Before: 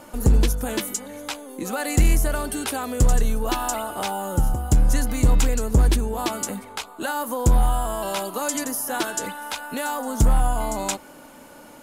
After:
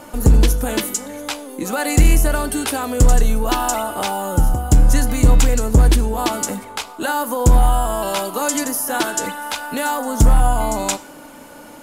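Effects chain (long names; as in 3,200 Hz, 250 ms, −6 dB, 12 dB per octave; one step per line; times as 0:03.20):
feedback delay network reverb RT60 0.49 s, high-frequency decay 1×, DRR 13.5 dB
level +5 dB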